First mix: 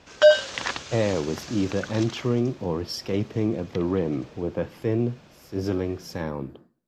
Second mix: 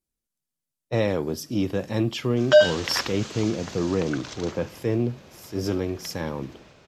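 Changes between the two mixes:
speech: add peaking EQ 10 kHz +10 dB 2 oct; background: entry +2.30 s

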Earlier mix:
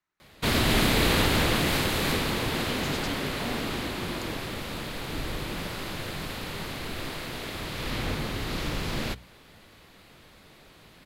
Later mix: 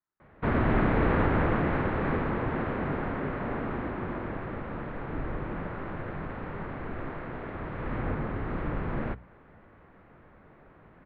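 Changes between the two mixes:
speech -6.5 dB; master: add low-pass 1.7 kHz 24 dB/octave

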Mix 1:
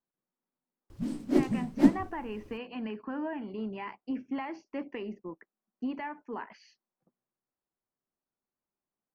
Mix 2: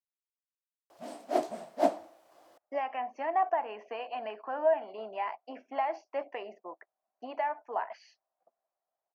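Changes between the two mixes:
speech: entry +1.40 s; master: add resonant high-pass 670 Hz, resonance Q 7.6

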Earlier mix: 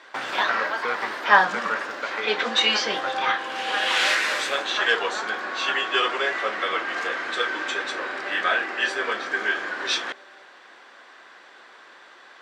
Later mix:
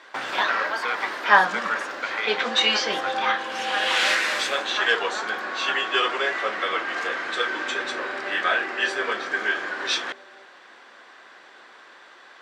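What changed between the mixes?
speech: add tilt shelf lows -9.5 dB, about 1.3 kHz; second sound: add tilt EQ -3 dB/octave

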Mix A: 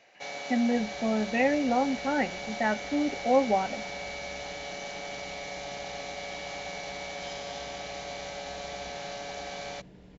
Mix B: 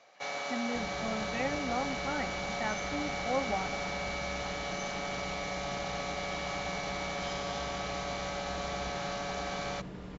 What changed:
speech -10.5 dB; second sound +8.0 dB; master: add peaking EQ 1.2 kHz +11 dB 0.51 oct

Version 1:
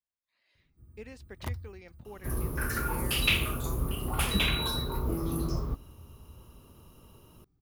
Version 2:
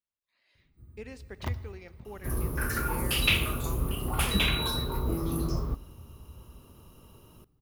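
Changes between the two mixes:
first sound: add peaking EQ 9.9 kHz -12 dB 0.88 oct; reverb: on, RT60 1.8 s

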